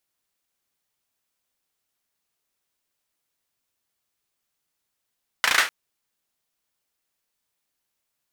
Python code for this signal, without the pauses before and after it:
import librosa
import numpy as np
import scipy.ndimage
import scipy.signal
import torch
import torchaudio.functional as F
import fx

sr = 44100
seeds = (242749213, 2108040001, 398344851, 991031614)

y = fx.drum_clap(sr, seeds[0], length_s=0.25, bursts=5, spacing_ms=35, hz=1700.0, decay_s=0.31)